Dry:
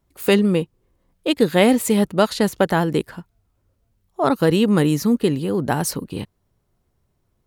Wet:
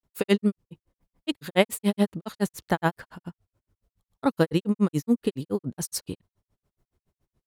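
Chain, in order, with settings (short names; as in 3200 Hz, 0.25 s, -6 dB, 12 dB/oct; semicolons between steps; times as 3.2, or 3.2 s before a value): grains 0.1 s, grains 7.1/s, pitch spread up and down by 0 st; gain -2 dB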